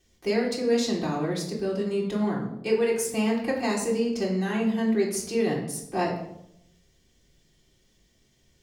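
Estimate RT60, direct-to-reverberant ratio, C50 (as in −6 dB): 0.80 s, −6.0 dB, 6.0 dB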